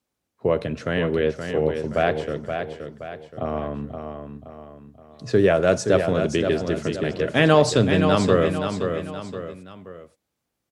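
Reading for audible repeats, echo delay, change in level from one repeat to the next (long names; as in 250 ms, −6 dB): 3, 523 ms, −7.5 dB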